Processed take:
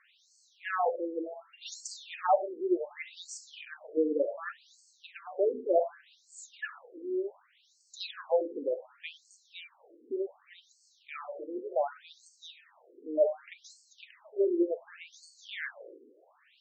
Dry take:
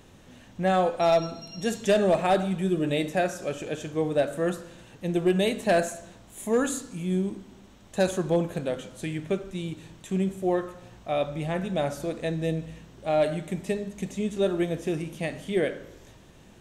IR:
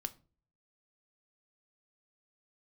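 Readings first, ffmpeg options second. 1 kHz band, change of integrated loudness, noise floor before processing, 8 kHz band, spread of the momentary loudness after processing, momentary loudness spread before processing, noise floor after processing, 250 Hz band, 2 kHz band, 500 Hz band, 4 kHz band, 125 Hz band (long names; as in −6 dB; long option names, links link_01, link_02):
−5.5 dB, −6.0 dB, −52 dBFS, −9.5 dB, 22 LU, 13 LU, −67 dBFS, −10.5 dB, −7.5 dB, −6.0 dB, −8.5 dB, below −40 dB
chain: -af "afftfilt=real='re*between(b*sr/1024,350*pow(6100/350,0.5+0.5*sin(2*PI*0.67*pts/sr))/1.41,350*pow(6100/350,0.5+0.5*sin(2*PI*0.67*pts/sr))*1.41)':imag='im*between(b*sr/1024,350*pow(6100/350,0.5+0.5*sin(2*PI*0.67*pts/sr))/1.41,350*pow(6100/350,0.5+0.5*sin(2*PI*0.67*pts/sr))*1.41)':win_size=1024:overlap=0.75"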